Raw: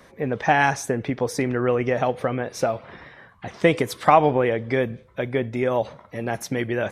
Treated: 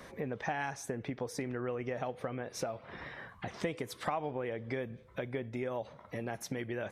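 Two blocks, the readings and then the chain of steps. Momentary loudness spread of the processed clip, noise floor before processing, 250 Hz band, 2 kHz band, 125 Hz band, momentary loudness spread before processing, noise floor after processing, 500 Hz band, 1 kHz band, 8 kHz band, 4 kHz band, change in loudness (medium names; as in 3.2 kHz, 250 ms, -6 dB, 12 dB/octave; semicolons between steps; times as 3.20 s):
7 LU, -52 dBFS, -14.0 dB, -15.0 dB, -14.0 dB, 12 LU, -57 dBFS, -15.5 dB, -18.0 dB, -11.0 dB, -12.5 dB, -16.0 dB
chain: compression 3:1, threshold -39 dBFS, peak gain reduction 21 dB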